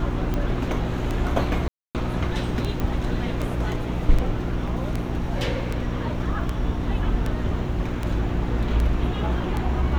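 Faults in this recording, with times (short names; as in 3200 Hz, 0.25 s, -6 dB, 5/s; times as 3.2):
hum 60 Hz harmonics 6 -29 dBFS
tick 78 rpm -14 dBFS
1.68–1.95 gap 0.268 s
2.8 pop -14 dBFS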